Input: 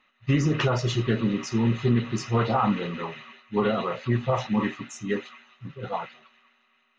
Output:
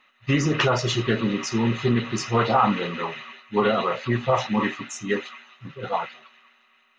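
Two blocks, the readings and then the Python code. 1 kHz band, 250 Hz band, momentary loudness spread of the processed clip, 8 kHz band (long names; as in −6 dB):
+5.0 dB, +1.0 dB, 12 LU, can't be measured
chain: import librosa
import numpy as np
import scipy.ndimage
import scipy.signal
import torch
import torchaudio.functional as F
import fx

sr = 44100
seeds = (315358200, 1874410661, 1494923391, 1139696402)

y = fx.low_shelf(x, sr, hz=300.0, db=-8.5)
y = y * librosa.db_to_amplitude(6.0)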